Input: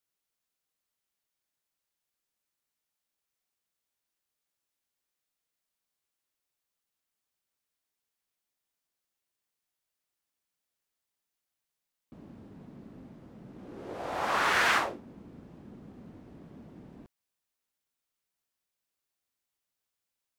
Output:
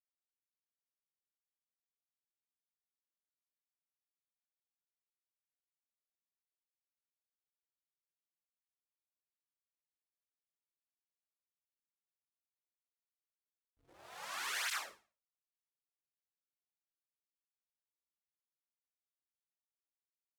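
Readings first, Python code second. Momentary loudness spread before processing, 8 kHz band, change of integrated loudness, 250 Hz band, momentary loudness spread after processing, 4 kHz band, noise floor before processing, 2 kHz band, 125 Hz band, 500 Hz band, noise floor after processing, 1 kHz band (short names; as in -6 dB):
22 LU, -3.0 dB, -11.5 dB, -30.0 dB, 14 LU, -8.0 dB, under -85 dBFS, -13.5 dB, under -30 dB, -23.0 dB, under -85 dBFS, -17.5 dB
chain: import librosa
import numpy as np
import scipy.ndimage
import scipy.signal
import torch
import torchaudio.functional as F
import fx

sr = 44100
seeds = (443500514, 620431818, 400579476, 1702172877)

p1 = fx.env_lowpass(x, sr, base_hz=1300.0, full_db=-37.5)
p2 = librosa.effects.preemphasis(p1, coef=0.97, zi=[0.0])
p3 = fx.rider(p2, sr, range_db=10, speed_s=0.5)
p4 = p2 + (p3 * 10.0 ** (1.5 / 20.0))
p5 = fx.backlash(p4, sr, play_db=-44.5)
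p6 = p5 + fx.room_flutter(p5, sr, wall_m=9.8, rt60_s=0.35, dry=0)
p7 = fx.flanger_cancel(p6, sr, hz=0.51, depth_ms=5.8)
y = p7 * 10.0 ** (-5.0 / 20.0)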